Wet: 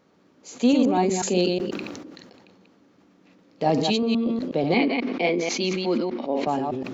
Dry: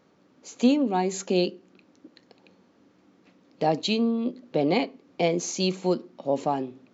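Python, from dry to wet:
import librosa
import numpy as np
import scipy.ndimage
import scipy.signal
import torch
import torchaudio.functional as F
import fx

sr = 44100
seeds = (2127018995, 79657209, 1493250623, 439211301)

y = fx.reverse_delay(x, sr, ms=122, wet_db=-4.0)
y = fx.cabinet(y, sr, low_hz=210.0, low_slope=24, high_hz=4800.0, hz=(230.0, 570.0, 2200.0), db=(6, -4, 7), at=(4.74, 6.47))
y = fx.sustainer(y, sr, db_per_s=34.0)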